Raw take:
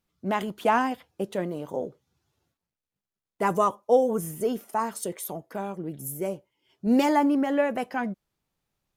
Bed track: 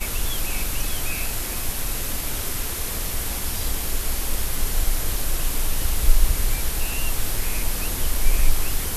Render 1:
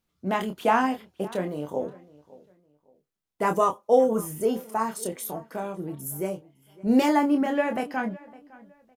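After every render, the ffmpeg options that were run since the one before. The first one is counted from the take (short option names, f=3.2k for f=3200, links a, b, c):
-filter_complex "[0:a]asplit=2[a][b];[b]adelay=27,volume=-6dB[c];[a][c]amix=inputs=2:normalize=0,asplit=2[d][e];[e]adelay=559,lowpass=f=3.1k:p=1,volume=-21dB,asplit=2[f][g];[g]adelay=559,lowpass=f=3.1k:p=1,volume=0.29[h];[d][f][h]amix=inputs=3:normalize=0"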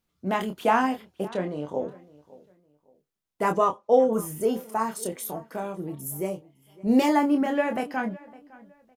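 -filter_complex "[0:a]asettb=1/sr,asplit=3[a][b][c];[a]atrim=end=1.294[d];[b]atrim=start=1.29:end=1.89,asetpts=PTS-STARTPTS,afade=t=in:d=0.004:c=qsin,afade=t=out:st=0.596:d=0.004:c=qsin,lowpass=6k[e];[c]atrim=start=1.886[f];[d][e]acrossfade=d=0.004:c1=hsin:c2=qsin[g];[g][f]acrossfade=d=0.004:c1=qsin:c2=hsin,asettb=1/sr,asplit=3[h][i][j];[h]atrim=end=3.524[k];[i]atrim=start=3.52:end=4.13,asetpts=PTS-STARTPTS,afade=t=in:d=0.004:c=qsin,afade=t=out:st=0.606:d=0.004:c=qsin,lowpass=5.1k[l];[j]atrim=start=4.126[m];[k][l]acrossfade=d=0.004:c1=hsin:c2=qsin[n];[n][m]acrossfade=d=0.004:c1=qsin:c2=hsin,asettb=1/sr,asplit=3[o][p][q];[o]atrim=end=5.824[r];[p]atrim=start=5.82:end=7.12,asetpts=PTS-STARTPTS,afade=t=in:d=0.004:c=qsin,afade=t=out:st=1.296:d=0.004:c=qsin,bandreject=f=1.5k:w=6.6[s];[q]atrim=start=7.116[t];[r][s]acrossfade=d=0.004:c1=hsin:c2=qsin[u];[u][t]acrossfade=d=0.004:c1=qsin:c2=hsin"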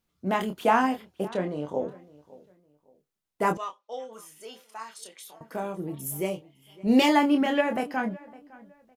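-filter_complex "[0:a]asettb=1/sr,asplit=3[a][b][c];[a]atrim=end=3.574[d];[b]atrim=start=3.57:end=5.41,asetpts=PTS-STARTPTS,afade=t=in:d=0.004:c=qsin,afade=t=out:st=1.836:d=0.004:c=qsin,bandpass=f=3.6k:t=q:w=1.2[e];[c]atrim=start=5.406[f];[d][e]acrossfade=d=0.004:c1=hsin:c2=qsin[g];[g][f]acrossfade=d=0.004:c1=qsin:c2=hsin,asettb=1/sr,asplit=3[h][i][j];[h]atrim=end=5.954[k];[i]atrim=start=5.95:end=7.61,asetpts=PTS-STARTPTS,afade=t=in:d=0.004:c=qsin,afade=t=out:st=1.656:d=0.004:c=qsin,equalizer=f=3.1k:w=1.1:g=9.5[l];[j]atrim=start=7.606[m];[k][l]acrossfade=d=0.004:c1=hsin:c2=qsin[n];[n][m]acrossfade=d=0.004:c1=qsin:c2=hsin"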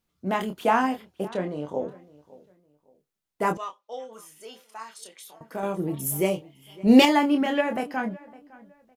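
-filter_complex "[0:a]asplit=3[a][b][c];[a]atrim=end=5.632[d];[b]atrim=start=5.628:end=7.052,asetpts=PTS-STARTPTS,volume=5.5dB[e];[c]atrim=start=7.048[f];[d][e]acrossfade=d=0.004:c1=hsin:c2=hsin[g];[g][f]acrossfade=d=0.004:c1=hsin:c2=hsin"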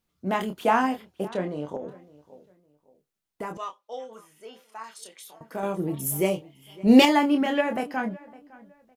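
-filter_complex "[0:a]asettb=1/sr,asplit=3[a][b][c];[a]atrim=end=1.764[d];[b]atrim=start=1.76:end=3.59,asetpts=PTS-STARTPTS,afade=t=in:d=0.004:c=qsin,afade=t=out:st=1.826:d=0.004:c=qsin,acompressor=threshold=-30dB:ratio=6:attack=3.2:release=140:knee=1:detection=peak[e];[c]atrim=start=3.586[f];[d][e]acrossfade=d=0.004:c1=hsin:c2=qsin[g];[g][f]acrossfade=d=0.004:c1=qsin:c2=hsin,asettb=1/sr,asplit=3[h][i][j];[h]atrim=end=4.104[k];[i]atrim=start=4.1:end=4.84,asetpts=PTS-STARTPTS,afade=t=in:d=0.004:c=qsin,afade=t=out:st=0.736:d=0.004:c=qsin,acrossover=split=2800[l][m];[m]acompressor=threshold=-59dB:ratio=4:attack=1:release=60[n];[l][n]amix=inputs=2:normalize=0[o];[j]atrim=start=4.836[p];[k][o]acrossfade=d=0.004:c1=hsin:c2=qsin[q];[q][p]acrossfade=d=0.004:c1=qsin:c2=hsin"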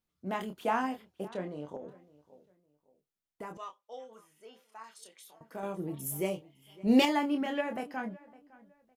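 -af "volume=-8.5dB"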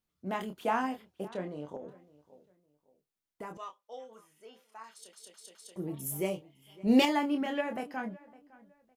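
-filter_complex "[0:a]asplit=5[a][b][c][d][e];[a]atrim=end=5.132[f];[b]atrim=start=4.918:end=5.132[g];[c]atrim=start=4.918:end=5.132[h];[d]atrim=start=4.918:end=5.132[i];[e]atrim=start=5.758[j];[f][g]acrossfade=d=0.004:c1=hsin:c2=hsin[k];[k][h]acrossfade=d=0.004:c1=hsin:c2=hsin[l];[l][i]acrossfade=d=0.004:c1=hsin:c2=hsin[m];[m][j]acrossfade=d=0.004:c1=hsin:c2=hsin"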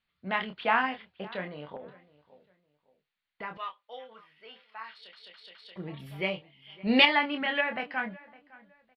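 -af "firequalizer=gain_entry='entry(200,0);entry(320,-6);entry(480,0);entry(1900,13);entry(4400,7);entry(6400,-27)':delay=0.05:min_phase=1"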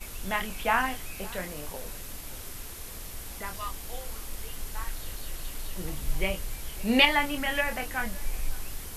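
-filter_complex "[1:a]volume=-13.5dB[a];[0:a][a]amix=inputs=2:normalize=0"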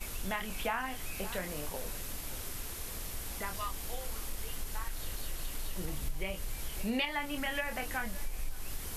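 -af "acompressor=threshold=-32dB:ratio=4"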